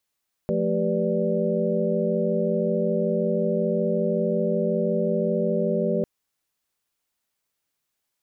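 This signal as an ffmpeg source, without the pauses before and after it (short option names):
-f lavfi -i "aevalsrc='0.0447*(sin(2*PI*174.61*t)+sin(2*PI*220*t)+sin(2*PI*392*t)+sin(2*PI*493.88*t)+sin(2*PI*587.33*t))':d=5.55:s=44100"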